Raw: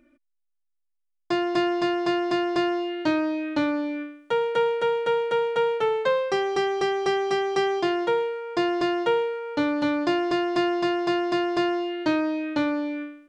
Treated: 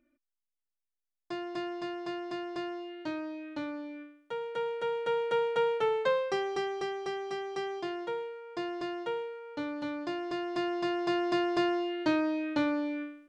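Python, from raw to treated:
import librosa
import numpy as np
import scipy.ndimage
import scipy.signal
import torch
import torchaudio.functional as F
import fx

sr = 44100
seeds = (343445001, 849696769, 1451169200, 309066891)

y = fx.gain(x, sr, db=fx.line((4.38, -13.0), (5.34, -5.0), (6.09, -5.0), (7.1, -12.0), (10.14, -12.0), (11.3, -4.5)))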